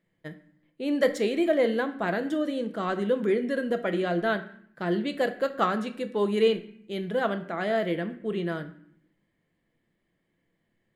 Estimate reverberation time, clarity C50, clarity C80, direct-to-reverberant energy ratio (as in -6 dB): 0.65 s, 13.0 dB, 16.5 dB, 7.5 dB